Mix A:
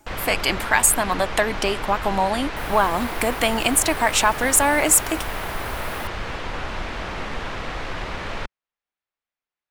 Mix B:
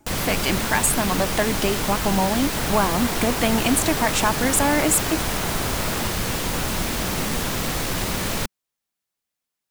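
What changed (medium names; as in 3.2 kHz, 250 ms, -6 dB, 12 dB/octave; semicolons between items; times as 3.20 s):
speech -4.5 dB; first sound: remove low-pass 2.5 kHz 12 dB/octave; master: add peaking EQ 180 Hz +10.5 dB 2.2 oct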